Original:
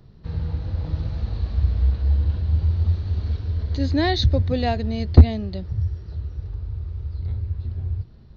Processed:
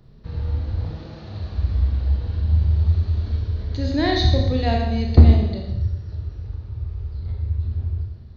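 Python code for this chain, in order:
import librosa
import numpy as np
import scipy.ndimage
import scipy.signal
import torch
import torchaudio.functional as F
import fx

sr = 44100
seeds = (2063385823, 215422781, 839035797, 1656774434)

y = fx.highpass(x, sr, hz=fx.line((0.9, 210.0), (1.61, 51.0)), slope=24, at=(0.9, 1.61), fade=0.02)
y = fx.rev_schroeder(y, sr, rt60_s=1.0, comb_ms=27, drr_db=0.5)
y = y * 10.0 ** (-1.5 / 20.0)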